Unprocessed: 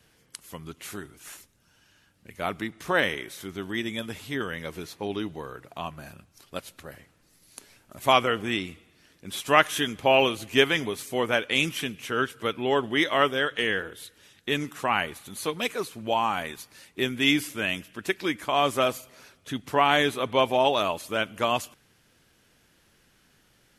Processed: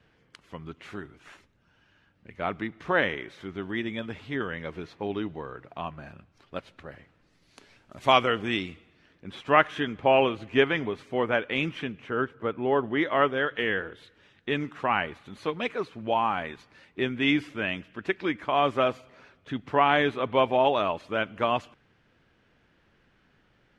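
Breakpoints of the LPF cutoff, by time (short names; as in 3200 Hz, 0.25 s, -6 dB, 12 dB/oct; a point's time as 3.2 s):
6.77 s 2600 Hz
8.06 s 4700 Hz
8.64 s 4700 Hz
9.32 s 2100 Hz
11.82 s 2100 Hz
12.31 s 1200 Hz
13.7 s 2500 Hz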